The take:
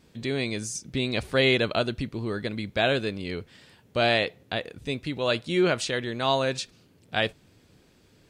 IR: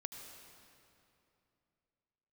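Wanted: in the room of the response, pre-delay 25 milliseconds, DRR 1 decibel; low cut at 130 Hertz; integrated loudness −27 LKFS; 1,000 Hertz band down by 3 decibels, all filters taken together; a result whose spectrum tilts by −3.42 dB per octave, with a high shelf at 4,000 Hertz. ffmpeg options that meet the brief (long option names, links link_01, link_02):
-filter_complex "[0:a]highpass=130,equalizer=frequency=1000:width_type=o:gain=-5,highshelf=frequency=4000:gain=5,asplit=2[link_01][link_02];[1:a]atrim=start_sample=2205,adelay=25[link_03];[link_02][link_03]afir=irnorm=-1:irlink=0,volume=1.5dB[link_04];[link_01][link_04]amix=inputs=2:normalize=0,volume=-2.5dB"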